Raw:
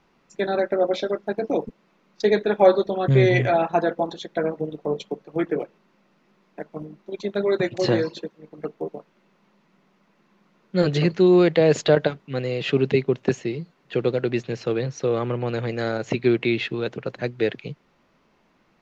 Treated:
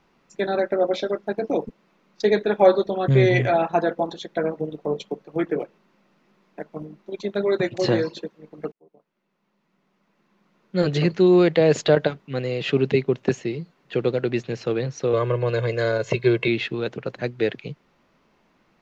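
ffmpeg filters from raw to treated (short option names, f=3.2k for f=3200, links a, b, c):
-filter_complex "[0:a]asettb=1/sr,asplit=3[a][b][c];[a]atrim=end=15.134[d];[b]atrim=start=15.13:end=16.48,asetpts=PTS-STARTPTS,afade=t=in:d=0.004:c=qsin,afade=t=out:st=1.346:d=0.004:c=qsin,aecho=1:1:1.9:0.93,atrim=end_sample=59535[e];[c]atrim=start=16.476[f];[d][e]acrossfade=d=0.004:c1=hsin:c2=qsin[g];[g][f]acrossfade=d=0.004:c1=qsin:c2=hsin,asplit=2[h][i];[h]atrim=end=8.72,asetpts=PTS-STARTPTS,afade=t=out:st=8.716:d=0.004:c=hsin[j];[i]atrim=start=8.72,asetpts=PTS-STARTPTS,afade=t=in:d=2.37[k];[j][k]concat=n=2:v=0:a=1"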